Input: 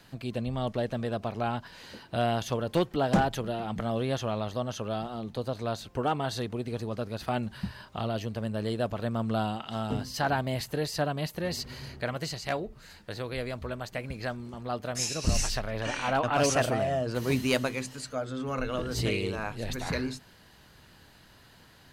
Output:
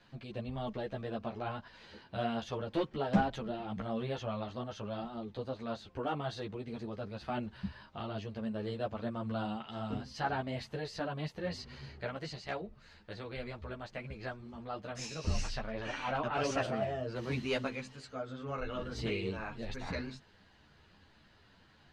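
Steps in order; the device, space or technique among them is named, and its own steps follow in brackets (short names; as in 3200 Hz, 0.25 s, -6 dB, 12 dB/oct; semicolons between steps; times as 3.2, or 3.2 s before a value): string-machine ensemble chorus (ensemble effect; LPF 4400 Hz 12 dB/oct); gain -3.5 dB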